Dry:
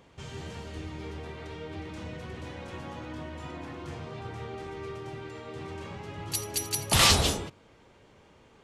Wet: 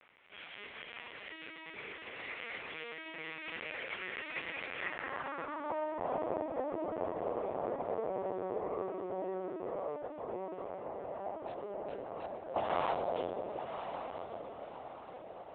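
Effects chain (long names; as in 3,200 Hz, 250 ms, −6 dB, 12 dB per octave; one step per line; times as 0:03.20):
stylus tracing distortion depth 0.054 ms
source passing by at 0:02.39, 11 m/s, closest 9.9 metres
high-pass filter 230 Hz 24 dB per octave
low-shelf EQ 400 Hz +11 dB
in parallel at +1 dB: downward compressor 12 to 1, threshold −42 dBFS, peak gain reduction 12.5 dB
on the sum: time stretch by overlap-add 1.8×, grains 51 ms
bit reduction 10 bits
high-frequency loss of the air 130 metres
on a send: feedback delay with all-pass diffusion 1,086 ms, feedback 56%, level −7 dB
on the sum: linear-prediction vocoder at 8 kHz pitch kept
band-pass filter sweep 2,300 Hz → 680 Hz, 0:04.72–0:06.15
one half of a high-frequency compander decoder only
level +11 dB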